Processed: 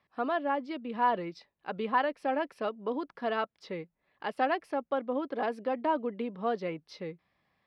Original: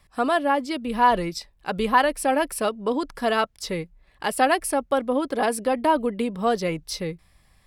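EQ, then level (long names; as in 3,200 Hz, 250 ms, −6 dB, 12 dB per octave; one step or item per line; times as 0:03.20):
high-pass filter 200 Hz 12 dB per octave
high-frequency loss of the air 270 metres
−7.5 dB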